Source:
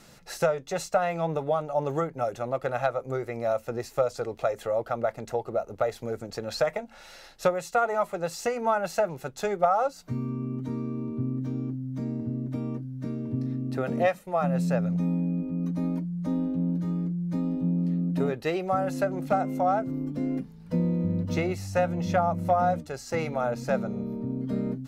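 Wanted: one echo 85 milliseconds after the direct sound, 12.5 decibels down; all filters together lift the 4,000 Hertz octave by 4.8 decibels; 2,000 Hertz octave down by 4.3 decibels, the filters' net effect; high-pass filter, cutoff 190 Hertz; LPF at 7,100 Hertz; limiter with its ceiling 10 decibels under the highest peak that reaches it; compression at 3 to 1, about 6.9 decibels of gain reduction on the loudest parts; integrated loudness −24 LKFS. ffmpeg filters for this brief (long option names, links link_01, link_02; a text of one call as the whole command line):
ffmpeg -i in.wav -af "highpass=190,lowpass=7100,equalizer=frequency=2000:width_type=o:gain=-8,equalizer=frequency=4000:width_type=o:gain=8,acompressor=threshold=-28dB:ratio=3,alimiter=level_in=2dB:limit=-24dB:level=0:latency=1,volume=-2dB,aecho=1:1:85:0.237,volume=11dB" out.wav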